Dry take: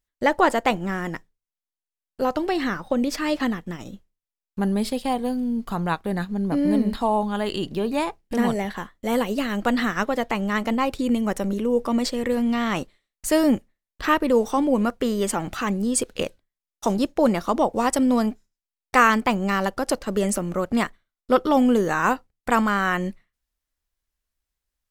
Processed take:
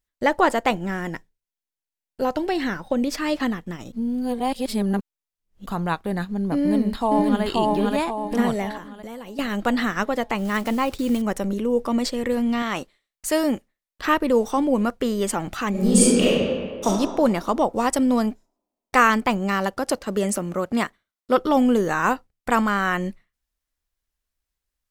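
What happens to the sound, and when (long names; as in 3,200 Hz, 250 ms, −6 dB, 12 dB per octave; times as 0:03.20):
0:00.74–0:03.02: notch filter 1,200 Hz, Q 6.5
0:03.92–0:05.66: reverse
0:06.58–0:07.43: delay throw 530 ms, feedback 45%, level −0.5 dB
0:08.77–0:09.39: downward compressor 8 to 1, threshold −33 dBFS
0:10.38–0:11.22: one scale factor per block 5 bits
0:12.62–0:14.05: low-shelf EQ 250 Hz −8.5 dB
0:15.70–0:16.86: thrown reverb, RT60 1.8 s, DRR −9 dB
0:19.38–0:21.36: high-pass filter 45 Hz → 170 Hz 6 dB per octave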